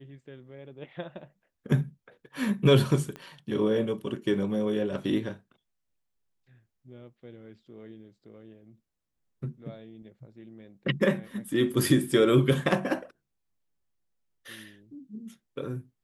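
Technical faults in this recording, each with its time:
3.16 s: pop -26 dBFS

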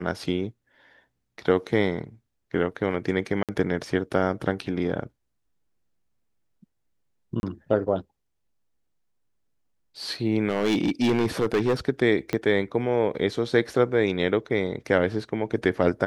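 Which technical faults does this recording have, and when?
3.43–3.49 s: dropout 57 ms
7.40–7.43 s: dropout 31 ms
10.49–11.75 s: clipped -17.5 dBFS
12.33 s: pop -13 dBFS

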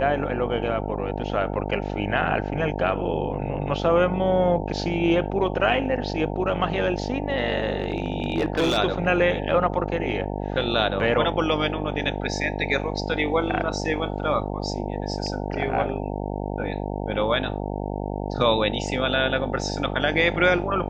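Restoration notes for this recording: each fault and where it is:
buzz 50 Hz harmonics 18 -29 dBFS
7.80–8.78 s: clipped -17 dBFS

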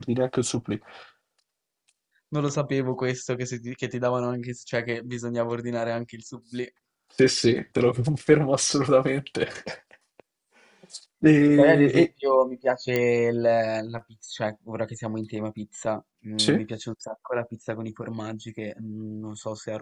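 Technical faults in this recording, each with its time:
12.96 s: pop -11 dBFS

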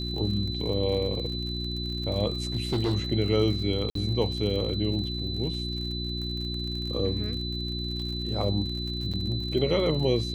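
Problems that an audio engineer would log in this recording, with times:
crackle 57 per s -35 dBFS
hum 60 Hz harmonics 6 -33 dBFS
whine 4 kHz -34 dBFS
2.55–2.94 s: clipped -21.5 dBFS
3.90–3.95 s: dropout 53 ms
9.13–9.14 s: dropout 7 ms

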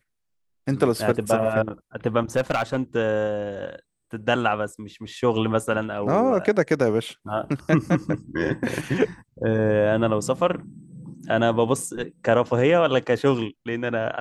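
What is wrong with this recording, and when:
2.36–2.77 s: clipped -17 dBFS

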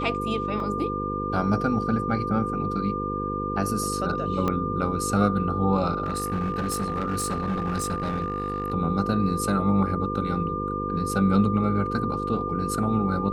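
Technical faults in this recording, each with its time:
buzz 50 Hz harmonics 10 -31 dBFS
whine 1.2 kHz -29 dBFS
0.60 s: dropout 2.2 ms
4.48 s: pop -13 dBFS
6.04–8.72 s: clipped -22.5 dBFS

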